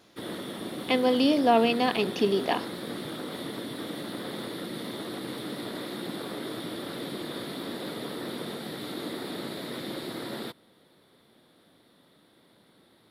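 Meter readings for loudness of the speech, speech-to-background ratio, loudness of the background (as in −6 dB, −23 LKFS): −25.0 LKFS, 11.0 dB, −36.0 LKFS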